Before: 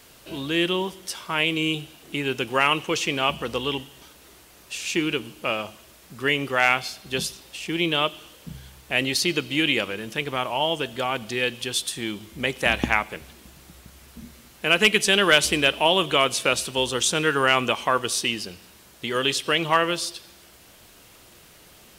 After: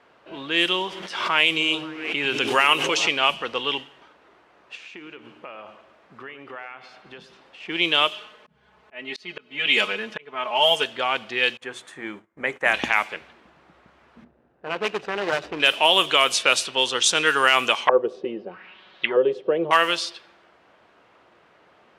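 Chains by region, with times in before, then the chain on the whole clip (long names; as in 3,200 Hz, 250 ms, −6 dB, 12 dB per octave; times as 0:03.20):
0:00.89–0:03.09: echo through a band-pass that steps 106 ms, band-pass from 180 Hz, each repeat 0.7 octaves, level −4.5 dB + background raised ahead of every attack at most 35 dB per second
0:04.75–0:07.60: downward compressor 10 to 1, threshold −33 dBFS + delay that swaps between a low-pass and a high-pass 109 ms, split 1,800 Hz, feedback 59%, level −13 dB
0:08.11–0:10.84: comb filter 4.7 ms, depth 93% + volume swells 484 ms
0:11.57–0:12.74: mains-hum notches 60/120/180/240/300/360/420 Hz + noise gate −40 dBFS, range −22 dB + flat-topped bell 3,800 Hz −13 dB 1.3 octaves
0:14.24–0:15.60: running median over 41 samples + parametric band 220 Hz −5.5 dB 0.38 octaves
0:17.88–0:19.71: high-shelf EQ 2,700 Hz +8.5 dB + comb filter 5.4 ms, depth 44% + envelope-controlled low-pass 480–4,500 Hz down, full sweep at −19.5 dBFS
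whole clip: low-pass that shuts in the quiet parts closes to 1,200 Hz, open at −15.5 dBFS; high-pass filter 930 Hz 6 dB per octave; boost into a limiter +9 dB; level −3.5 dB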